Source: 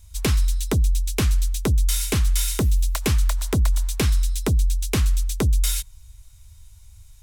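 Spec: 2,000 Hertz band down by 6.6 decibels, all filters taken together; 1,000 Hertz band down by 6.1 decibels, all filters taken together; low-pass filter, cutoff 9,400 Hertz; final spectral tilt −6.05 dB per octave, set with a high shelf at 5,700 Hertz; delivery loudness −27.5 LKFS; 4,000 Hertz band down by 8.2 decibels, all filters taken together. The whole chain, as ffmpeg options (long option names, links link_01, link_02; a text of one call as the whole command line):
ffmpeg -i in.wav -af "lowpass=9400,equalizer=frequency=1000:width_type=o:gain=-6,equalizer=frequency=2000:width_type=o:gain=-4,equalizer=frequency=4000:width_type=o:gain=-6.5,highshelf=frequency=5700:gain=-6,volume=-4dB" out.wav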